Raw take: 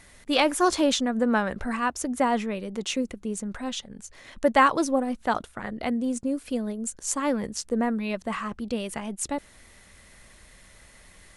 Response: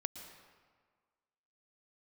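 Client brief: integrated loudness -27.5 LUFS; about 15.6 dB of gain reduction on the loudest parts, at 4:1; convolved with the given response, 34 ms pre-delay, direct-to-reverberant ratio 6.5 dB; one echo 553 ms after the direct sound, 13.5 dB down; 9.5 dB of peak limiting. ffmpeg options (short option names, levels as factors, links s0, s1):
-filter_complex "[0:a]acompressor=threshold=0.0224:ratio=4,alimiter=level_in=1.5:limit=0.0631:level=0:latency=1,volume=0.668,aecho=1:1:553:0.211,asplit=2[s0][s1];[1:a]atrim=start_sample=2205,adelay=34[s2];[s1][s2]afir=irnorm=-1:irlink=0,volume=0.531[s3];[s0][s3]amix=inputs=2:normalize=0,volume=2.82"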